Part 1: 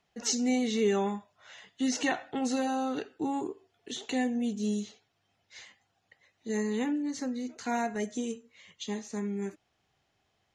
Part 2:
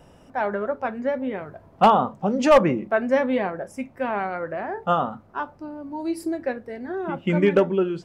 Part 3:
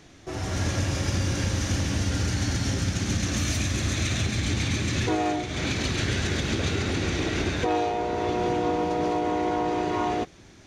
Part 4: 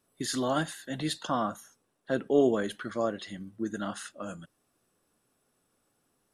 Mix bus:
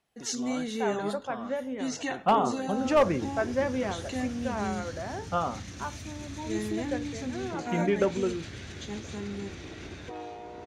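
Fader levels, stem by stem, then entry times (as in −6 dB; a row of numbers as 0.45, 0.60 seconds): −4.0, −7.5, −15.5, −11.5 decibels; 0.00, 0.45, 2.45, 0.00 seconds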